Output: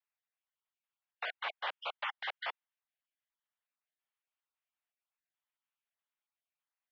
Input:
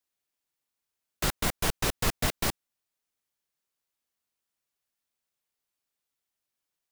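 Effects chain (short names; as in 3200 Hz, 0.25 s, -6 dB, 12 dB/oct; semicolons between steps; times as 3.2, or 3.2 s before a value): random spectral dropouts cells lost 25%; mistuned SSB +110 Hz 550–3300 Hz; gain -3.5 dB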